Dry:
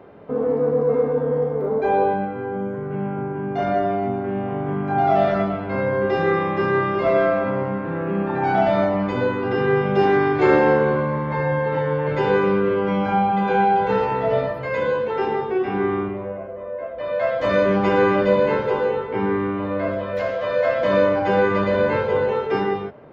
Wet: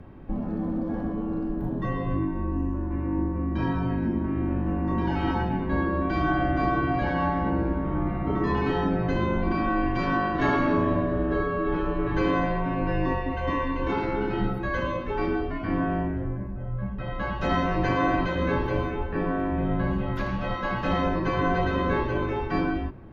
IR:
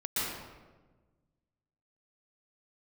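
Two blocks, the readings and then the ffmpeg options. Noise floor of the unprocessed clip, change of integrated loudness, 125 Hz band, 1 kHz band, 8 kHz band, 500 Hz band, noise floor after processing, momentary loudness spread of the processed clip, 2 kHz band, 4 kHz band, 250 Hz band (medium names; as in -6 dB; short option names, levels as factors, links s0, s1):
-30 dBFS, -6.0 dB, -0.5 dB, -6.5 dB, no reading, -11.0 dB, -32 dBFS, 5 LU, -5.0 dB, -3.5 dB, -1.5 dB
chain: -af "afftfilt=real='re*lt(hypot(re,im),0.501)':imag='im*lt(hypot(re,im),0.501)':win_size=1024:overlap=0.75,afreqshift=-470"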